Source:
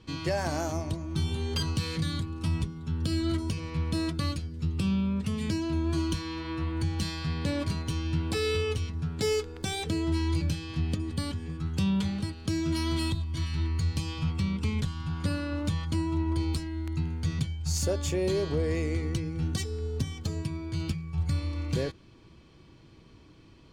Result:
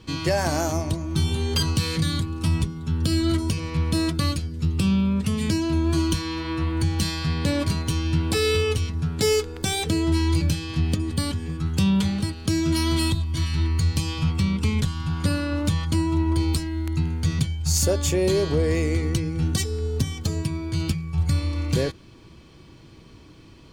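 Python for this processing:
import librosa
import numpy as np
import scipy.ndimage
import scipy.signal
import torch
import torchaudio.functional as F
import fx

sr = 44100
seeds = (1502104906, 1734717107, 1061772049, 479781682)

y = fx.high_shelf(x, sr, hz=8600.0, db=8.5)
y = y * librosa.db_to_amplitude(6.5)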